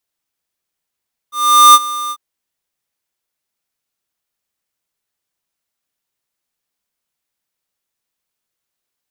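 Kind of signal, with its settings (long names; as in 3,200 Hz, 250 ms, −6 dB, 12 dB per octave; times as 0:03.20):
note with an ADSR envelope square 1,200 Hz, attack 422 ms, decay 42 ms, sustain −18 dB, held 0.79 s, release 55 ms −3.5 dBFS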